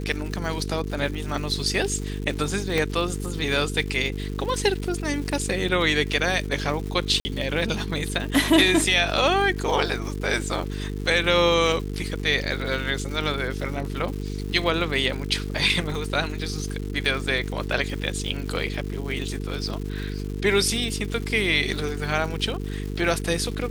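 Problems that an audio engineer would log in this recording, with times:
buzz 50 Hz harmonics 9 -30 dBFS
crackle 310/s -33 dBFS
2.78 pop -10 dBFS
7.2–7.25 gap 50 ms

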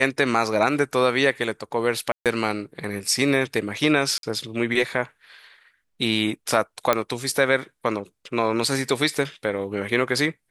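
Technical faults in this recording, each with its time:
2.12–2.26 gap 0.137 s
4.18–4.23 gap 52 ms
6.93 pop -5 dBFS

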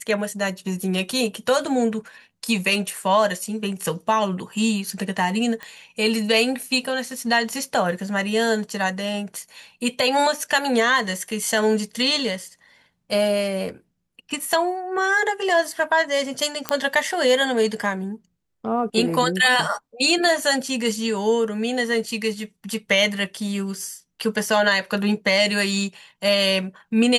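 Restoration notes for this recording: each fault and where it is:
5.63 pop -19 dBFS
16.69 pop -5 dBFS

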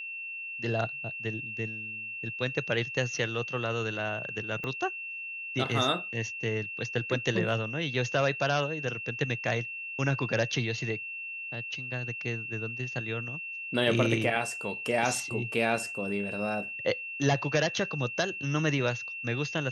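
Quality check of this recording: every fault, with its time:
tone 2700 Hz -36 dBFS
4.64 pop -22 dBFS

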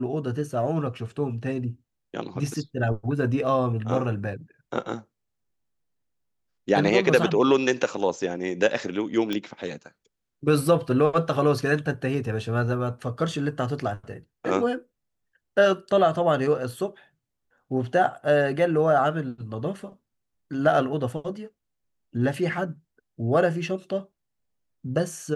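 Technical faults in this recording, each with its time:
9.33 pop -14 dBFS

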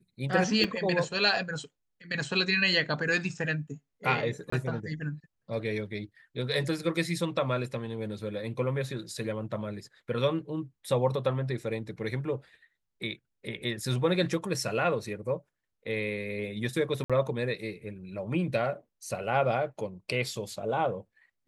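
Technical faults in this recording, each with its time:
0.64 gap 4.1 ms
4.5–4.52 gap 24 ms
17.04–17.1 gap 56 ms

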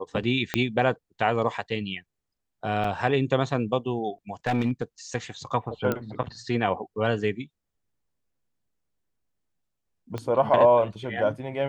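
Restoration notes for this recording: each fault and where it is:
0.54 pop -9 dBFS
2.84 gap 4.6 ms
4.47–4.83 clipped -18.5 dBFS
5.92 pop -13 dBFS
10.18 pop -19 dBFS

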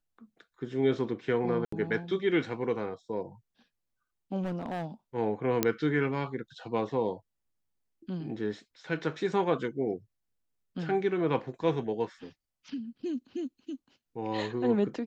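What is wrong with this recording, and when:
1.65–1.72 gap 74 ms
4.42–4.85 clipped -29.5 dBFS
5.63 pop -9 dBFS

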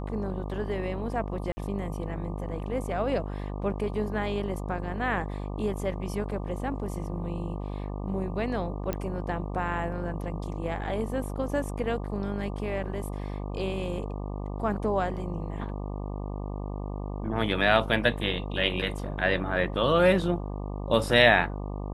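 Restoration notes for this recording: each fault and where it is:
buzz 50 Hz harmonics 24 -34 dBFS
1.52–1.57 gap 50 ms
8.93 pop -16 dBFS

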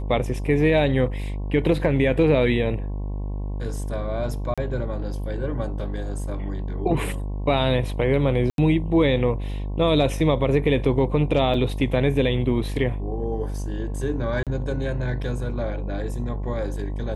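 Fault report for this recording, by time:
buzz 50 Hz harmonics 22 -28 dBFS
4.54–4.58 gap 36 ms
8.5–8.58 gap 82 ms
11.54 gap 3.4 ms
14.43–14.47 gap 37 ms

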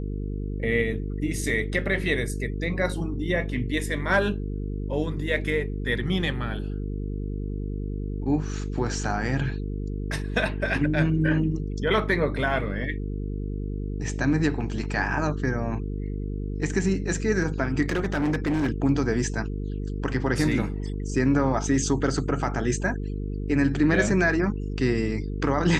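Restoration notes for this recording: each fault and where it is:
buzz 50 Hz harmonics 9 -30 dBFS
17.86–18.7 clipped -20.5 dBFS

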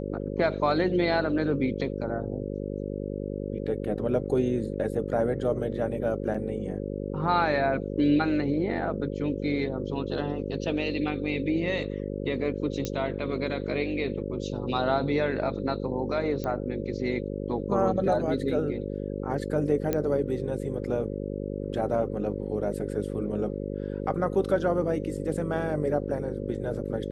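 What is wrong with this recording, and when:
buzz 50 Hz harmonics 11 -33 dBFS
6.34–6.35 gap 5.3 ms
12.85 pop -15 dBFS
16.44 pop -19 dBFS
19.93 pop -13 dBFS

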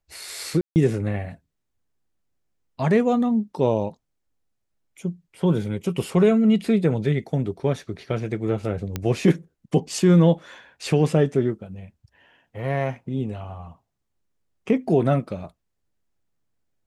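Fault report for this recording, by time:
0.61–0.76 gap 0.149 s
8.96 pop -12 dBFS

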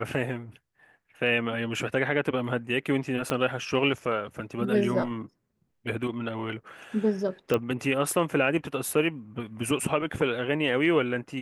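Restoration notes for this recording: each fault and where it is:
3.3 pop -13 dBFS
7.54 pop -13 dBFS

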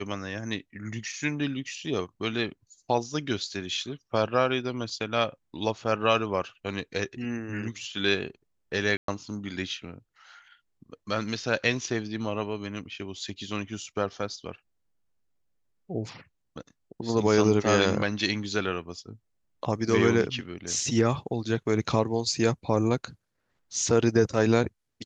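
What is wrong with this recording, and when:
8.97–9.08 gap 0.113 s

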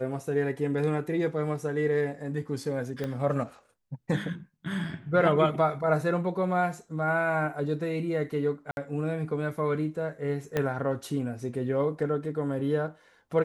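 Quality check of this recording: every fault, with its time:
3.04 pop -20 dBFS
8.71–8.77 gap 61 ms
10.57 pop -14 dBFS

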